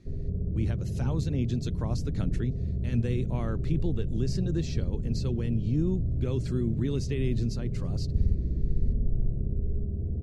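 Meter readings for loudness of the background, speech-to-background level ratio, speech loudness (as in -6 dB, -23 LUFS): -32.5 LUFS, 0.0 dB, -32.5 LUFS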